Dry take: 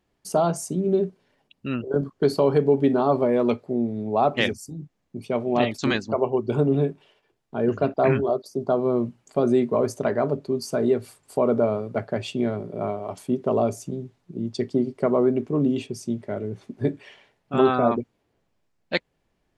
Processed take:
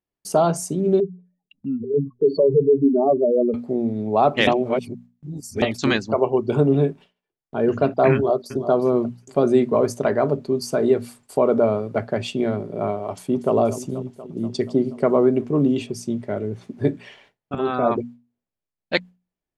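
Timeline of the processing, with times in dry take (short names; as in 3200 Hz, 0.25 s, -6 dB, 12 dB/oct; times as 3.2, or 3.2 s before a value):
1–3.54 spectral contrast raised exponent 3
4.47–5.62 reverse
8.14–8.69 echo throw 0.36 s, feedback 25%, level -11.5 dB
13.1–13.54 echo throw 0.24 s, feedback 75%, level -13.5 dB
17.55–17.98 fade in, from -14.5 dB
whole clip: gate with hold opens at -44 dBFS; notches 60/120/180/240 Hz; gain +3.5 dB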